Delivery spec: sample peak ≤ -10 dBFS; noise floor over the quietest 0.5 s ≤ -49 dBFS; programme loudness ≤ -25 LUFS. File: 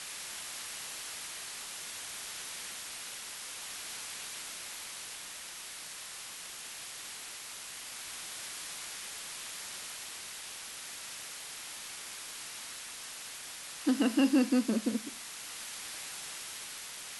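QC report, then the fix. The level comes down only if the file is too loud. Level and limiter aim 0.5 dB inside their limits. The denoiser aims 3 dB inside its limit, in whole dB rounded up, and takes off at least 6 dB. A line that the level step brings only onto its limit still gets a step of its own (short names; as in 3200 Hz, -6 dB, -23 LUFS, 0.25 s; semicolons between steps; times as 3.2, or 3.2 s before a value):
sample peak -16.0 dBFS: OK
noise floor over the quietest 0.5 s -45 dBFS: fail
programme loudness -37.5 LUFS: OK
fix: denoiser 7 dB, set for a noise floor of -45 dBFS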